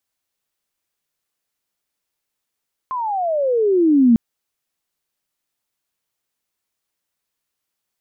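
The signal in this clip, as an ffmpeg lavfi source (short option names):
-f lavfi -i "aevalsrc='pow(10,(-8+13*(t/1.25-1))/20)*sin(2*PI*1060*1.25/(-27*log(2)/12)*(exp(-27*log(2)/12*t/1.25)-1))':d=1.25:s=44100"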